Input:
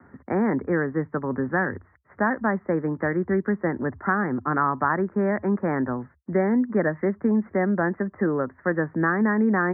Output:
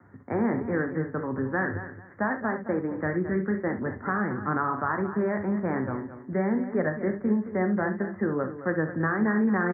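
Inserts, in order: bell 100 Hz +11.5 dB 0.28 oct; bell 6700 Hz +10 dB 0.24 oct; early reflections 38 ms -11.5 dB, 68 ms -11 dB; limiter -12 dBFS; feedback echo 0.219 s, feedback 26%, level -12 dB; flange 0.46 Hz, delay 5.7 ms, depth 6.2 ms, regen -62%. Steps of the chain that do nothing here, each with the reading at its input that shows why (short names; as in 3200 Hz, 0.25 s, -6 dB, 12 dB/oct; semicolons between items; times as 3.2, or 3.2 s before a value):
bell 6700 Hz: input band ends at 2000 Hz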